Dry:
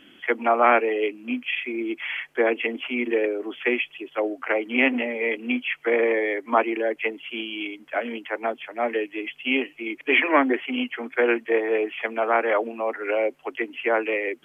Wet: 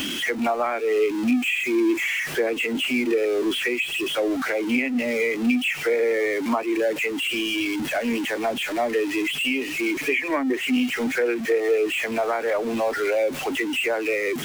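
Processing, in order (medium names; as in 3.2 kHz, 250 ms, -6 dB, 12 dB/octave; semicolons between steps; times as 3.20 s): jump at every zero crossing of -20.5 dBFS; treble shelf 2.4 kHz +6.5 dB; compression 6:1, threshold -21 dBFS, peak gain reduction 11 dB; peaking EQ 180 Hz +3.5 dB 0.55 oct; spectral contrast expander 1.5:1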